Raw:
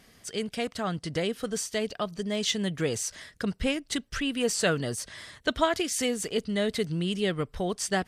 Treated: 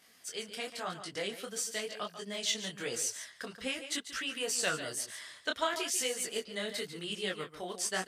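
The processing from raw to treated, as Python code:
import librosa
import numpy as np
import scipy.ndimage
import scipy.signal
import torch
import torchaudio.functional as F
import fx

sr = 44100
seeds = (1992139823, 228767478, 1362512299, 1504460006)

p1 = fx.highpass(x, sr, hz=780.0, slope=6)
p2 = fx.high_shelf(p1, sr, hz=8100.0, db=4.5)
p3 = p2 + fx.echo_single(p2, sr, ms=144, db=-11.5, dry=0)
y = fx.detune_double(p3, sr, cents=34)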